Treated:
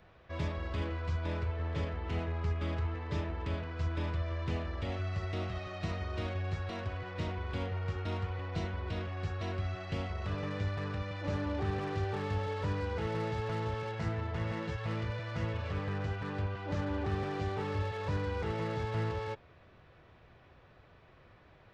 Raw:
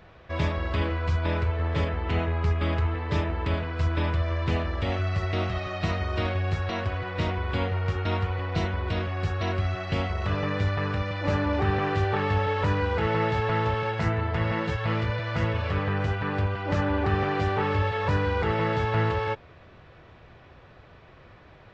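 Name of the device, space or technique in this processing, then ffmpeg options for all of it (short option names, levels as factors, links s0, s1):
one-band saturation: -filter_complex "[0:a]acrossover=split=590|4000[s0][s1][s2];[s1]asoftclip=type=tanh:threshold=0.0251[s3];[s0][s3][s2]amix=inputs=3:normalize=0,volume=0.376"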